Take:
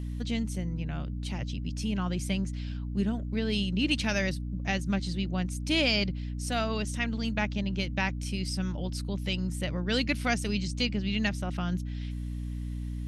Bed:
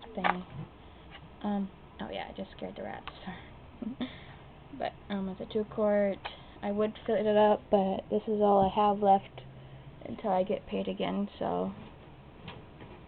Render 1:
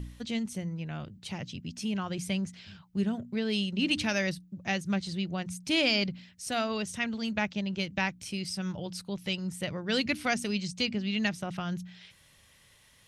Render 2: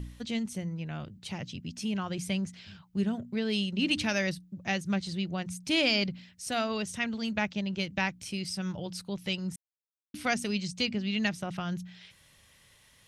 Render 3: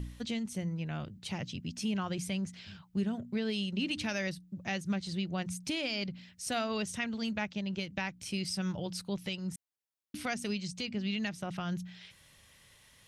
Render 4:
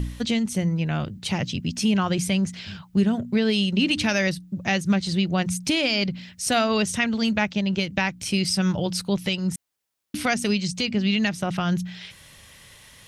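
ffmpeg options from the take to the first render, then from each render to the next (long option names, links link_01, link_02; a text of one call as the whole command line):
ffmpeg -i in.wav -af "bandreject=frequency=60:width_type=h:width=4,bandreject=frequency=120:width_type=h:width=4,bandreject=frequency=180:width_type=h:width=4,bandreject=frequency=240:width_type=h:width=4,bandreject=frequency=300:width_type=h:width=4" out.wav
ffmpeg -i in.wav -filter_complex "[0:a]asplit=3[link_01][link_02][link_03];[link_01]atrim=end=9.56,asetpts=PTS-STARTPTS,afade=type=out:start_time=9.556:duration=0.004:curve=hsin[link_04];[link_02]atrim=start=9.56:end=10.14,asetpts=PTS-STARTPTS,volume=0[link_05];[link_03]atrim=start=10.14,asetpts=PTS-STARTPTS,afade=type=in:duration=0.004:curve=hsin[link_06];[link_04][link_05][link_06]concat=n=3:v=0:a=1" out.wav
ffmpeg -i in.wav -af "alimiter=limit=-23.5dB:level=0:latency=1:release=281" out.wav
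ffmpeg -i in.wav -af "volume=12dB" out.wav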